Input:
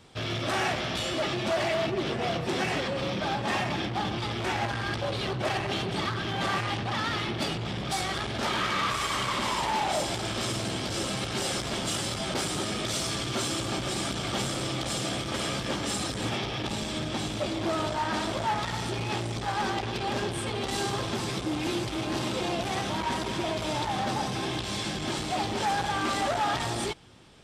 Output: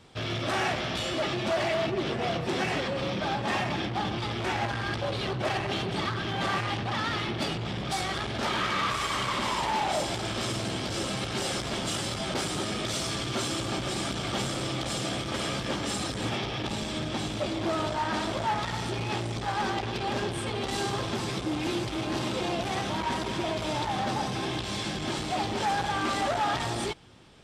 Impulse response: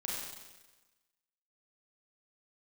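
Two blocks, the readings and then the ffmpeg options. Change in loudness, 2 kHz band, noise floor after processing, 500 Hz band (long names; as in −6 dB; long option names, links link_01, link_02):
−0.5 dB, 0.0 dB, −34 dBFS, 0.0 dB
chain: -af "highshelf=frequency=7500:gain=-4.5"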